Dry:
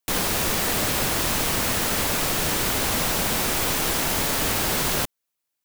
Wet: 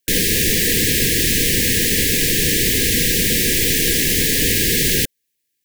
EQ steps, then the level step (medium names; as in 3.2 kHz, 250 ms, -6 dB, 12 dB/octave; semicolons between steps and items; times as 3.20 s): brick-wall FIR band-stop 520–1600 Hz; +7.5 dB